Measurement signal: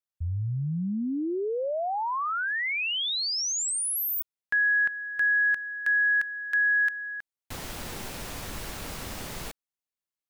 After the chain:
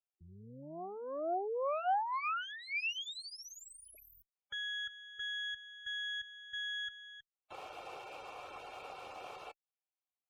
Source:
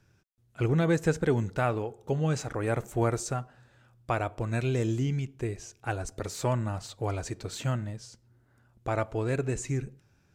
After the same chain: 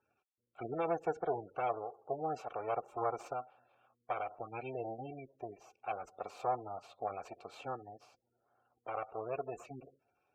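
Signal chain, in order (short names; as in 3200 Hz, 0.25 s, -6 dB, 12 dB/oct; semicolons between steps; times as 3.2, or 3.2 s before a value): minimum comb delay 2.2 ms; spectral gate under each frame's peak -25 dB strong; vowel filter a; gain +7.5 dB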